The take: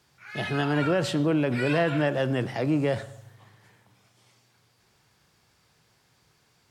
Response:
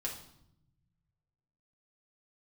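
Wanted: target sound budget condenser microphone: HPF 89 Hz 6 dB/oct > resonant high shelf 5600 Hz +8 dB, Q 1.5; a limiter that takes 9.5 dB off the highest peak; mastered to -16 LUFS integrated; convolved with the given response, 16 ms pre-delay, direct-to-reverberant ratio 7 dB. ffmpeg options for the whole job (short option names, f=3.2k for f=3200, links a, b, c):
-filter_complex "[0:a]alimiter=limit=-24dB:level=0:latency=1,asplit=2[a][b];[1:a]atrim=start_sample=2205,adelay=16[c];[b][c]afir=irnorm=-1:irlink=0,volume=-8dB[d];[a][d]amix=inputs=2:normalize=0,highpass=f=89:p=1,highshelf=f=5.6k:t=q:w=1.5:g=8,volume=16.5dB"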